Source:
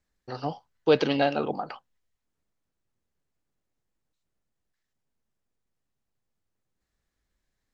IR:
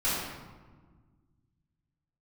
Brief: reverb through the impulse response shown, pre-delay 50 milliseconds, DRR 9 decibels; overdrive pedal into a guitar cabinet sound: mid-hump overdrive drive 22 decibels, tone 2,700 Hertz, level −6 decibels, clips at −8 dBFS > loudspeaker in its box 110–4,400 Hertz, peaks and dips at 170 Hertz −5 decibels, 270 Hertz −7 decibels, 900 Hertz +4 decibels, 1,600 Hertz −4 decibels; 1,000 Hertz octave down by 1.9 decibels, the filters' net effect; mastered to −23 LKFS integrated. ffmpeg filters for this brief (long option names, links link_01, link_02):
-filter_complex "[0:a]equalizer=frequency=1000:width_type=o:gain=-5,asplit=2[link_01][link_02];[1:a]atrim=start_sample=2205,adelay=50[link_03];[link_02][link_03]afir=irnorm=-1:irlink=0,volume=-19.5dB[link_04];[link_01][link_04]amix=inputs=2:normalize=0,asplit=2[link_05][link_06];[link_06]highpass=frequency=720:poles=1,volume=22dB,asoftclip=type=tanh:threshold=-8dB[link_07];[link_05][link_07]amix=inputs=2:normalize=0,lowpass=frequency=2700:poles=1,volume=-6dB,highpass=110,equalizer=frequency=170:width_type=q:width=4:gain=-5,equalizer=frequency=270:width_type=q:width=4:gain=-7,equalizer=frequency=900:width_type=q:width=4:gain=4,equalizer=frequency=1600:width_type=q:width=4:gain=-4,lowpass=frequency=4400:width=0.5412,lowpass=frequency=4400:width=1.3066,volume=-0.5dB"